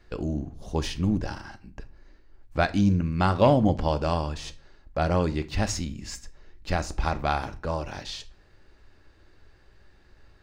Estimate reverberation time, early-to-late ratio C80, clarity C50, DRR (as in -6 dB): 0.40 s, 23.0 dB, 18.0 dB, 10.0 dB